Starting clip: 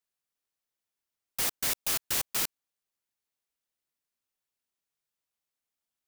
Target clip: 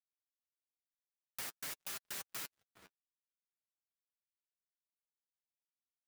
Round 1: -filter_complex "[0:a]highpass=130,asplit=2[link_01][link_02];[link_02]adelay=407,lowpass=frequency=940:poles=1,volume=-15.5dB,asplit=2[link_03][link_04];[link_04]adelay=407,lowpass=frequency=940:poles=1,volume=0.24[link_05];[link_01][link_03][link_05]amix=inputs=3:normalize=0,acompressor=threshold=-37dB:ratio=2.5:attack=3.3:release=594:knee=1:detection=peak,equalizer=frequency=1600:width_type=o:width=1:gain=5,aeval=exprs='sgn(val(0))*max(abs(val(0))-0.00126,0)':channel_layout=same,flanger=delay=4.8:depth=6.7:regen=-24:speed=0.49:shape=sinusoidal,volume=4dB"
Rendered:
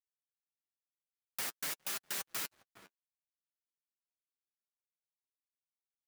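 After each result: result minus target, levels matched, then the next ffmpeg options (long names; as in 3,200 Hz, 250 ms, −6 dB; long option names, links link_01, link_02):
downward compressor: peak gain reduction −5 dB; 125 Hz band −2.5 dB
-filter_complex "[0:a]highpass=130,asplit=2[link_01][link_02];[link_02]adelay=407,lowpass=frequency=940:poles=1,volume=-15.5dB,asplit=2[link_03][link_04];[link_04]adelay=407,lowpass=frequency=940:poles=1,volume=0.24[link_05];[link_01][link_03][link_05]amix=inputs=3:normalize=0,acompressor=threshold=-45dB:ratio=2.5:attack=3.3:release=594:knee=1:detection=peak,equalizer=frequency=1600:width_type=o:width=1:gain=5,aeval=exprs='sgn(val(0))*max(abs(val(0))-0.00126,0)':channel_layout=same,flanger=delay=4.8:depth=6.7:regen=-24:speed=0.49:shape=sinusoidal,volume=4dB"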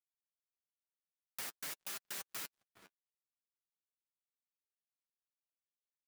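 125 Hz band −2.5 dB
-filter_complex "[0:a]highpass=47,asplit=2[link_01][link_02];[link_02]adelay=407,lowpass=frequency=940:poles=1,volume=-15.5dB,asplit=2[link_03][link_04];[link_04]adelay=407,lowpass=frequency=940:poles=1,volume=0.24[link_05];[link_01][link_03][link_05]amix=inputs=3:normalize=0,acompressor=threshold=-45dB:ratio=2.5:attack=3.3:release=594:knee=1:detection=peak,equalizer=frequency=1600:width_type=o:width=1:gain=5,aeval=exprs='sgn(val(0))*max(abs(val(0))-0.00126,0)':channel_layout=same,flanger=delay=4.8:depth=6.7:regen=-24:speed=0.49:shape=sinusoidal,volume=4dB"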